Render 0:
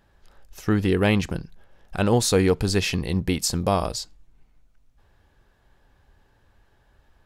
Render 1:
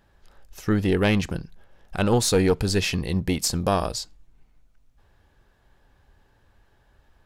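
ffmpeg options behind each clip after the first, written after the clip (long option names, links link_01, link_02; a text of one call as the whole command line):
ffmpeg -i in.wav -af "aeval=exprs='0.473*(cos(1*acos(clip(val(0)/0.473,-1,1)))-cos(1*PI/2))+0.106*(cos(2*acos(clip(val(0)/0.473,-1,1)))-cos(2*PI/2))':channel_layout=same" out.wav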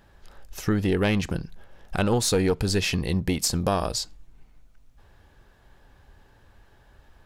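ffmpeg -i in.wav -af "acompressor=threshold=-30dB:ratio=2,volume=5dB" out.wav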